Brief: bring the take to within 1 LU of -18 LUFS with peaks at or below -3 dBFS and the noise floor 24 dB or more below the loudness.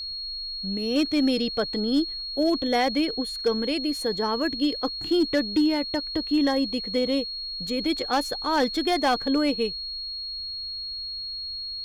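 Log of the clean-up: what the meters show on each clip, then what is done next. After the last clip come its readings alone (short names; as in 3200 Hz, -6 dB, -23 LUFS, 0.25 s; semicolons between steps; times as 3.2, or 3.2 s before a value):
clipped 0.5%; flat tops at -15.5 dBFS; steady tone 4300 Hz; tone level -31 dBFS; loudness -25.5 LUFS; peak -15.5 dBFS; loudness target -18.0 LUFS
-> clip repair -15.5 dBFS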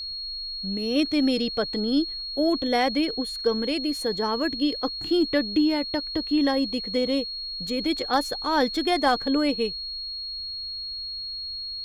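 clipped 0.0%; steady tone 4300 Hz; tone level -31 dBFS
-> notch 4300 Hz, Q 30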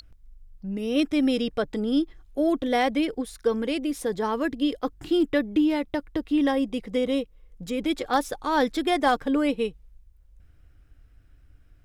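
steady tone none; loudness -25.5 LUFS; peak -9.0 dBFS; loudness target -18.0 LUFS
-> gain +7.5 dB; limiter -3 dBFS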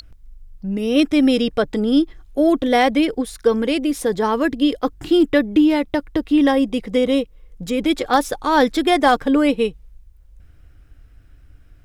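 loudness -18.5 LUFS; peak -3.0 dBFS; noise floor -48 dBFS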